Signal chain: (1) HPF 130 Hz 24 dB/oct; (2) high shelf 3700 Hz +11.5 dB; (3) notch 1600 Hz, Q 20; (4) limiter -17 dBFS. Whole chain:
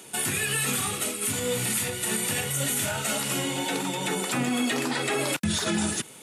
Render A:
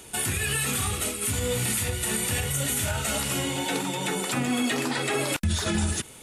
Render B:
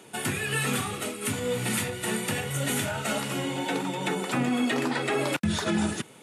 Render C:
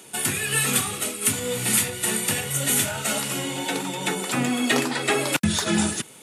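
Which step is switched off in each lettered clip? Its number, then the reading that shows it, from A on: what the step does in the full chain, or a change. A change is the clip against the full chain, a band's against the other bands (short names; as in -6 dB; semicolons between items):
1, 125 Hz band +4.5 dB; 2, 8 kHz band -8.0 dB; 4, mean gain reduction 2.0 dB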